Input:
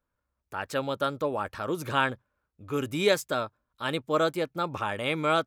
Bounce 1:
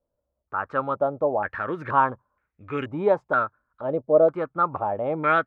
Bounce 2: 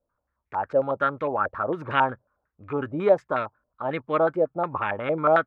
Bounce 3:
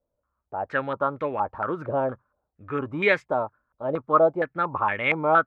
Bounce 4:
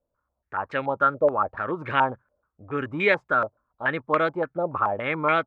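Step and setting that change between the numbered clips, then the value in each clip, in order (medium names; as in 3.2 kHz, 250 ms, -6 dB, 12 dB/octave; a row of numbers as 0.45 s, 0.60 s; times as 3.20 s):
step-sequenced low-pass, rate: 2.1 Hz, 11 Hz, 4.3 Hz, 7 Hz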